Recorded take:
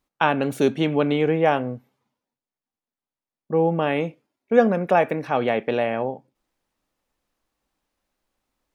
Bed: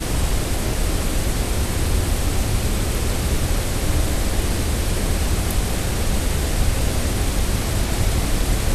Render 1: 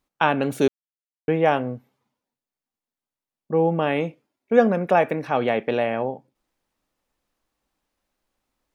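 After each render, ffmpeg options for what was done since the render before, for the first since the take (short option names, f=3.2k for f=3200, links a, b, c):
-filter_complex "[0:a]asplit=3[a][b][c];[a]atrim=end=0.68,asetpts=PTS-STARTPTS,afade=t=out:st=0.676:d=0.004:c=hsin[d];[b]atrim=start=0.68:end=1.28,asetpts=PTS-STARTPTS,volume=0[e];[c]atrim=start=1.28,asetpts=PTS-STARTPTS,afade=t=in:d=0.004:c=hsin[f];[d][e][f]concat=n=3:v=0:a=1"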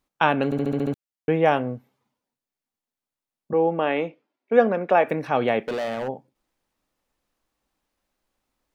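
-filter_complex "[0:a]asettb=1/sr,asplit=3[a][b][c];[a]atrim=end=3.534[d];[b]atrim=start=3.53:end=5.07,asetpts=PTS-STARTPTS,afade=t=in:d=0.004:c=qsin,afade=t=out:st=1.536:d=0.004:c=qsin,highpass=260,lowpass=3.9k[e];[c]atrim=start=5.066[f];[d][e]acrossfade=d=0.004:c1=hsin:c2=qsin[g];[g][f]acrossfade=d=0.004:c1=qsin:c2=hsin,asplit=3[h][i][j];[h]afade=t=out:st=5.66:d=0.02[k];[i]volume=24dB,asoftclip=hard,volume=-24dB,afade=t=in:st=5.66:d=0.02,afade=t=out:st=6.07:d=0.02[l];[j]afade=t=in:st=6.07:d=0.02[m];[k][l][m]amix=inputs=3:normalize=0,asplit=8[n][o][p][q][r][s][t][u];[n]atrim=end=0.522[v];[o]atrim=start=0.448:end=0.522[w];[p]atrim=start=0.448:end=0.522[x];[q]atrim=start=0.448:end=0.522[y];[r]atrim=start=0.448:end=0.522[z];[s]atrim=start=0.448:end=0.522[aa];[t]atrim=start=0.448:end=0.522[ab];[u]atrim=start=0.938[ac];[v][w]acrossfade=d=0.004:c1=hsin:c2=hsin[ad];[ad][x]acrossfade=d=0.004:c1=hsin:c2=hsin[ae];[ae][y]acrossfade=d=0.004:c1=hsin:c2=hsin[af];[af][z]acrossfade=d=0.004:c1=hsin:c2=hsin[ag];[ag][aa]acrossfade=d=0.004:c1=hsin:c2=hsin[ah];[ah][ab]acrossfade=d=0.004:c1=hsin:c2=hsin[ai];[ai][ac]acrossfade=d=0.004:c1=hsin:c2=hsin"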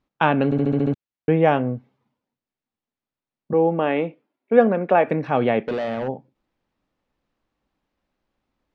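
-af "lowpass=3.9k,equalizer=f=140:t=o:w=2.9:g=6"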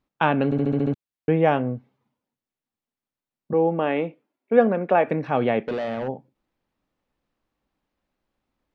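-af "volume=-2dB"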